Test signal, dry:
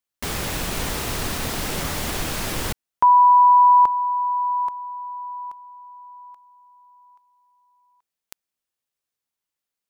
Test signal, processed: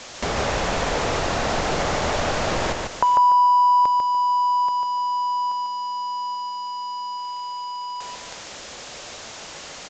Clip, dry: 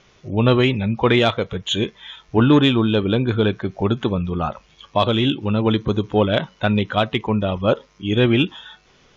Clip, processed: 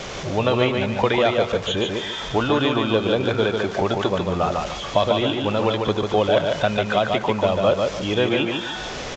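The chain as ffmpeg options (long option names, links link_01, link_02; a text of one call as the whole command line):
ffmpeg -i in.wav -filter_complex "[0:a]aeval=exprs='val(0)+0.5*0.0299*sgn(val(0))':channel_layout=same,acrossover=split=510|2000[link_01][link_02][link_03];[link_01]acompressor=threshold=-30dB:ratio=4[link_04];[link_02]acompressor=threshold=-27dB:ratio=4[link_05];[link_03]acompressor=threshold=-32dB:ratio=4[link_06];[link_04][link_05][link_06]amix=inputs=3:normalize=0,equalizer=frequency=600:width_type=o:width=0.99:gain=7,aecho=1:1:146|292|438|584:0.631|0.196|0.0606|0.0188,aresample=16000,aresample=44100,volume=2dB" out.wav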